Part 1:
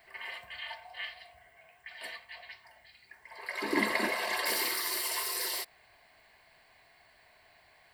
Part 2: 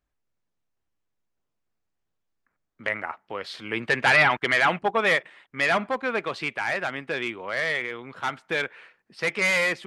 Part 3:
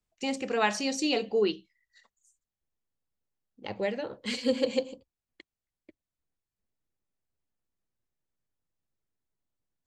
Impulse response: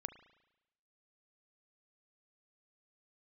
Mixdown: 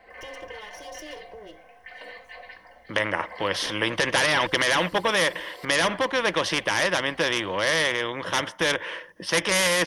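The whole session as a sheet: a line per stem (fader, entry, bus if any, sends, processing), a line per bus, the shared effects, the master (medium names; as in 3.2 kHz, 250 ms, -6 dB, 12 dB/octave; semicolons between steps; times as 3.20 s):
3.00 s -13.5 dB -> 3.67 s -6.5 dB, 0.00 s, no bus, no send, compressor with a negative ratio -45 dBFS, ratio -1; low-pass 1.1 kHz 6 dB/octave; comb 3.9 ms, depth 77%
+1.0 dB, 0.10 s, bus A, no send, none
-17.0 dB, 0.00 s, bus A, no send, comb filter that takes the minimum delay 2.1 ms; compression 5:1, threshold -40 dBFS, peak gain reduction 16.5 dB
bus A: 0.0 dB, rippled EQ curve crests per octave 1.2, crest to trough 12 dB; peak limiter -13 dBFS, peak gain reduction 7 dB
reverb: none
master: peaking EQ 480 Hz +10 dB 0.58 oct; spectrum-flattening compressor 2:1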